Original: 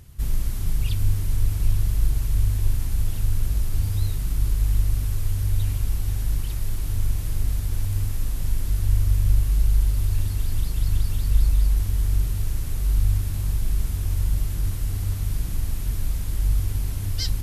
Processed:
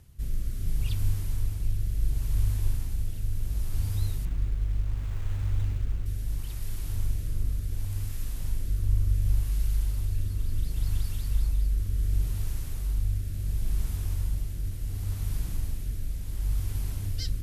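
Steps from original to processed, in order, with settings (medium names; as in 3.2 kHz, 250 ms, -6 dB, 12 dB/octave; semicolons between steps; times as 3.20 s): rotary cabinet horn 0.7 Hz; 4.25–6.06 s: sliding maximum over 9 samples; trim -4.5 dB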